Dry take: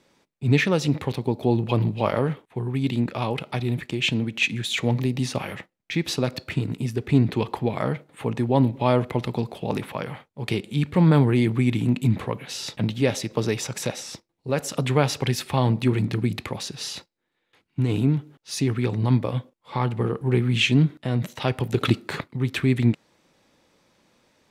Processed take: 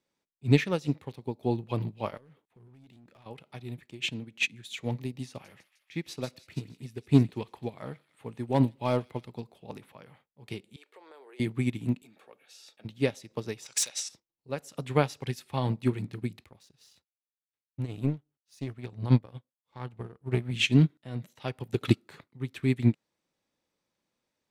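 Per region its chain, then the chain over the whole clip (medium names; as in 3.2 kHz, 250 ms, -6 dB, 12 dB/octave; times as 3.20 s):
2.17–3.26 s: compression, threshold -30 dBFS + overload inside the chain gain 30 dB
5.29–9.24 s: hard clipper -8.5 dBFS + feedback echo behind a high-pass 154 ms, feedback 63%, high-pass 2.6 kHz, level -9 dB
10.76–11.40 s: elliptic high-pass 400 Hz, stop band 70 dB + compression 4:1, threshold -28 dBFS
12.02–12.85 s: high-pass 490 Hz + comb of notches 1 kHz
13.66–14.09 s: frequency weighting ITU-R 468 + overload inside the chain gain 16 dB
16.44–20.51 s: peaking EQ 69 Hz +10.5 dB 1.2 oct + power-law waveshaper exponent 1.4
whole clip: treble shelf 5.3 kHz +5 dB; upward expansion 2.5:1, over -28 dBFS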